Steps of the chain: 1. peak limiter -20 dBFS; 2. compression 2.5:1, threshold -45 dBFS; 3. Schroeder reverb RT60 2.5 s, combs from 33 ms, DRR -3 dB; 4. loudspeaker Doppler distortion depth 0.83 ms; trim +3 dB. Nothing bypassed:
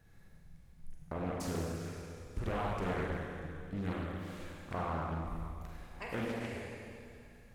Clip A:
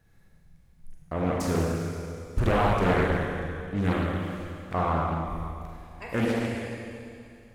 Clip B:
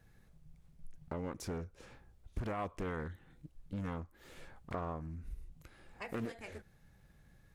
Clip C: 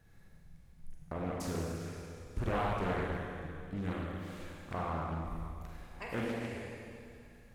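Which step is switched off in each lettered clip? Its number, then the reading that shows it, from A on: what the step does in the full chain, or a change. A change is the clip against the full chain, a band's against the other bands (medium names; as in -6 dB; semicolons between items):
2, mean gain reduction 6.0 dB; 3, momentary loudness spread change +6 LU; 1, momentary loudness spread change +2 LU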